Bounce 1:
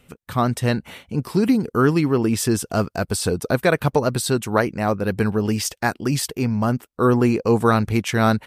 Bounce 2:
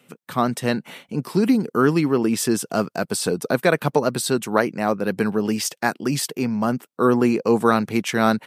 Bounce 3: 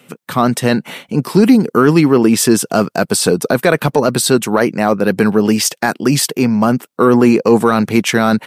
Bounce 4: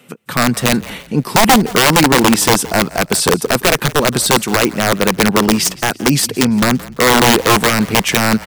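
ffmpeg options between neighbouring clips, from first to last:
-af "highpass=f=150:w=0.5412,highpass=f=150:w=1.3066"
-af "alimiter=limit=-10dB:level=0:latency=1:release=11,acontrast=21,volume=5dB"
-filter_complex "[0:a]aeval=exprs='(mod(1.58*val(0)+1,2)-1)/1.58':c=same,asplit=4[a][b][c][d];[b]adelay=170,afreqshift=-33,volume=-19dB[e];[c]adelay=340,afreqshift=-66,volume=-27.2dB[f];[d]adelay=510,afreqshift=-99,volume=-35.4dB[g];[a][e][f][g]amix=inputs=4:normalize=0"

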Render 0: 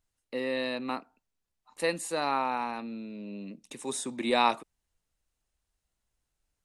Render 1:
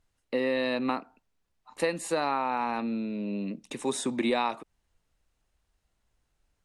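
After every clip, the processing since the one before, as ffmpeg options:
-af "aemphasis=mode=reproduction:type=cd,acompressor=threshold=-31dB:ratio=8,volume=7.5dB"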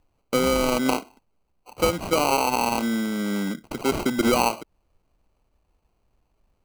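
-af "acrusher=samples=25:mix=1:aa=0.000001,volume=6.5dB"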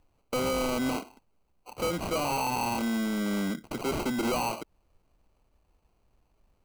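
-af "asoftclip=type=tanh:threshold=-25.5dB"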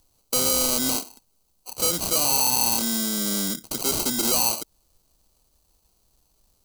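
-af "aexciter=amount=7.8:drive=3.2:freq=3.5k"

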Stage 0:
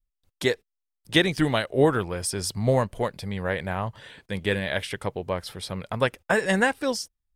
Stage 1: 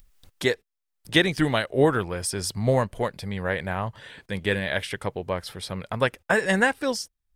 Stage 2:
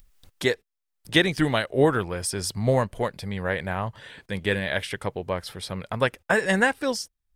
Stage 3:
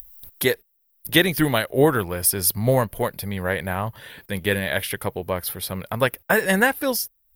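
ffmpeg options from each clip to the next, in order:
-af "equalizer=f=1.7k:t=o:w=0.77:g=2,acompressor=mode=upward:threshold=-38dB:ratio=2.5"
-af anull
-af "aexciter=amount=10.6:drive=8.2:freq=11k,volume=2.5dB"

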